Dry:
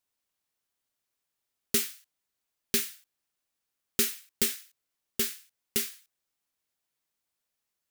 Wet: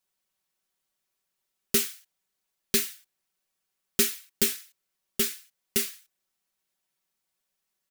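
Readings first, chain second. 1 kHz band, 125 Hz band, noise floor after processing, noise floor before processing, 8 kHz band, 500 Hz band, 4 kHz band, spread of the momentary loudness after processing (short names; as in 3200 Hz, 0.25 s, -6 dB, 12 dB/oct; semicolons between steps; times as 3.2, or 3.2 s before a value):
+2.5 dB, +3.0 dB, -82 dBFS, -85 dBFS, +2.5 dB, +4.5 dB, +2.5 dB, 10 LU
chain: comb 5.3 ms; gain +1 dB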